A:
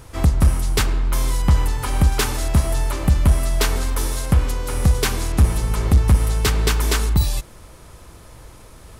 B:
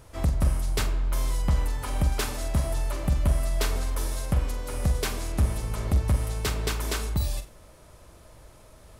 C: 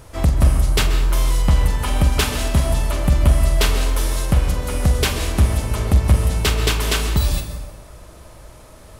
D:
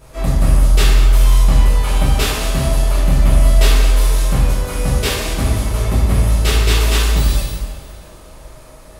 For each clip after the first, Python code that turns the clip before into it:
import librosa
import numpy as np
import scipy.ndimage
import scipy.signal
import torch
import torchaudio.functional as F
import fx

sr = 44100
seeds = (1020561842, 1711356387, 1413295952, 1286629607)

y1 = fx.peak_eq(x, sr, hz=610.0, db=8.0, octaves=0.27)
y1 = fx.room_flutter(y1, sr, wall_m=7.7, rt60_s=0.26)
y1 = y1 * librosa.db_to_amplitude(-9.0)
y2 = fx.rev_plate(y1, sr, seeds[0], rt60_s=1.4, hf_ratio=0.65, predelay_ms=115, drr_db=7.5)
y2 = fx.dynamic_eq(y2, sr, hz=3000.0, q=1.9, threshold_db=-49.0, ratio=4.0, max_db=6)
y2 = y2 * librosa.db_to_amplitude(8.0)
y3 = fx.rev_double_slope(y2, sr, seeds[1], early_s=0.8, late_s=3.1, knee_db=-18, drr_db=-9.5)
y3 = y3 * librosa.db_to_amplitude(-7.0)